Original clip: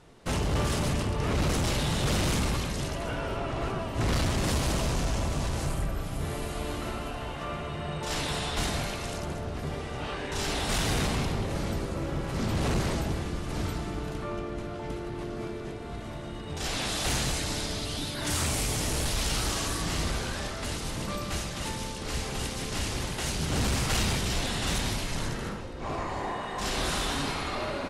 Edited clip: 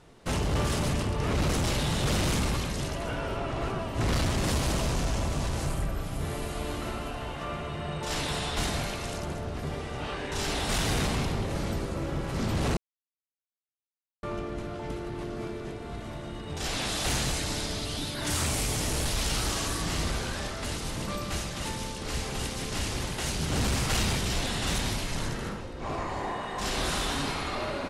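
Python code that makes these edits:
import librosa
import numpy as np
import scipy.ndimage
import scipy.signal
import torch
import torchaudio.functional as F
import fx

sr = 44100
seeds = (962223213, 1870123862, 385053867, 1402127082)

y = fx.edit(x, sr, fx.silence(start_s=12.77, length_s=1.46), tone=tone)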